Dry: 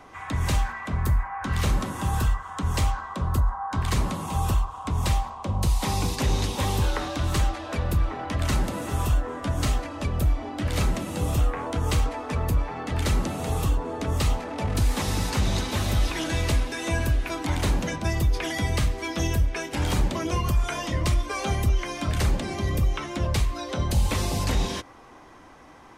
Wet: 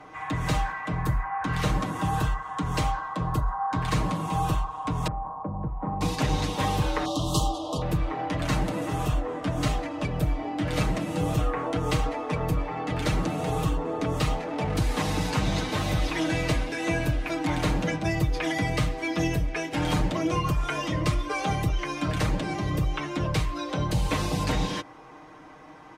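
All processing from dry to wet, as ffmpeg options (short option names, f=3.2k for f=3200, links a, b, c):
-filter_complex "[0:a]asettb=1/sr,asplit=3[a][b][c];[a]atrim=end=5.074[d];[b]atrim=start=5.07:end=6.01,asetpts=PTS-STARTPTS,afade=t=in:d=0.004:c=qsin,afade=t=out:st=0.936:d=0.004:c=qsin,lowpass=f=1.2k:w=0.5412,lowpass=f=1.2k:w=1.3066,equalizer=f=210:w=4.5:g=4.5,acompressor=threshold=-30dB:ratio=2:attack=3.2:release=140:knee=1:detection=peak[e];[c]atrim=start=6.006[f];[d][e]acrossfade=d=0.004:c1=hsin:c2=qsin[g];[g][f]acrossfade=d=0.004:c1=qsin:c2=hsin,asettb=1/sr,asplit=3[h][i][j];[h]atrim=end=7.054[k];[i]atrim=start=7.05:end=7.82,asetpts=PTS-STARTPTS,afade=t=in:d=0.004:c=qsin,afade=t=out:st=0.766:d=0.004:c=qsin,asuperstop=centerf=1900:order=12:qfactor=1.1,highshelf=f=3.1k:g=8.5[l];[j]atrim=start=7.816[m];[k][l]acrossfade=d=0.004:c1=hsin:c2=qsin[n];[n][m]acrossfade=d=0.004:c1=qsin:c2=hsin,highpass=f=66:p=1,aemphasis=mode=reproduction:type=cd,aecho=1:1:6.5:0.69"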